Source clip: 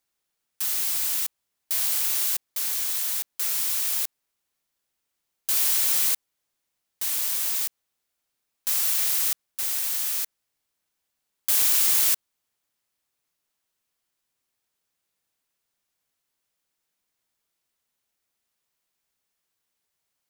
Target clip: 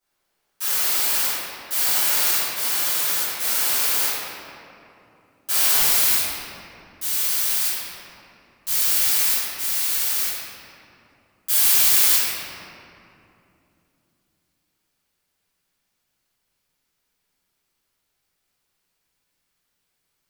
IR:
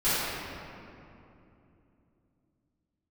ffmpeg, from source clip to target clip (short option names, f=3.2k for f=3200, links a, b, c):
-filter_complex "[0:a]asetnsamples=n=441:p=0,asendcmd='5.8 equalizer g -3.5',equalizer=f=710:t=o:w=3:g=4.5[a];[1:a]atrim=start_sample=2205[b];[a][b]afir=irnorm=-1:irlink=0,volume=-5.5dB"